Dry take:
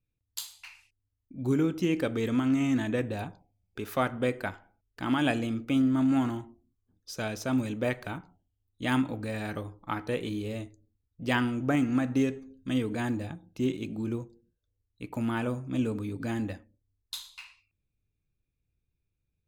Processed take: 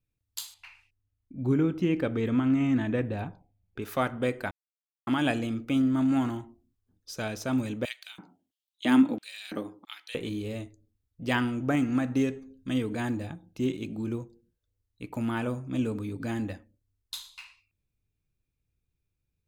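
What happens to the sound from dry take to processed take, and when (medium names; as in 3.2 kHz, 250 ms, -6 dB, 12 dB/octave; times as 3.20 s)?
0.54–3.82 s: tone controls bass +3 dB, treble -12 dB
4.51–5.07 s: mute
7.85–10.15 s: LFO high-pass square 1.5 Hz 250–3300 Hz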